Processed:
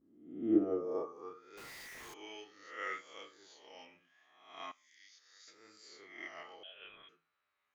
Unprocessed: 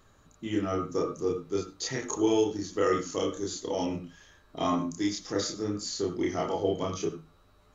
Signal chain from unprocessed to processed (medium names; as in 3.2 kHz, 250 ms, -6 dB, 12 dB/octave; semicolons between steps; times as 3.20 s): reverse spectral sustain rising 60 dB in 0.95 s; 4.72–5.47 s: differentiator; vibrato 0.74 Hz 60 cents; band-pass sweep 260 Hz -> 2.1 kHz, 0.47–1.58 s; 1.57–2.14 s: Schmitt trigger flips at -52.5 dBFS; 6.63–7.09 s: frequency inversion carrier 3.7 kHz; upward expansion 1.5:1, over -49 dBFS; trim +1.5 dB